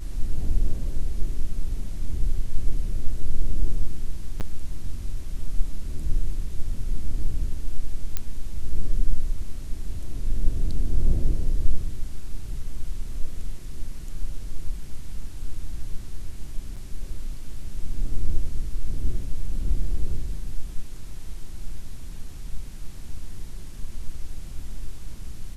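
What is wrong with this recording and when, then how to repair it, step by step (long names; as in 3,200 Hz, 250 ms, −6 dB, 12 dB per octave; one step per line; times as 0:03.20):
0:04.40–0:04.41: drop-out 8.6 ms
0:08.17: click −11 dBFS
0:16.76–0:16.77: drop-out 6.4 ms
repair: click removal
repair the gap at 0:04.40, 8.6 ms
repair the gap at 0:16.76, 6.4 ms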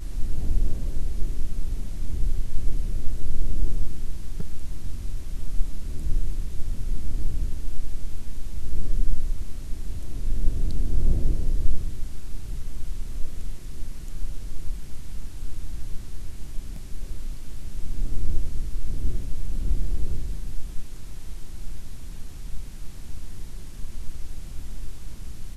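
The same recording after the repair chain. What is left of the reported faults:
none of them is left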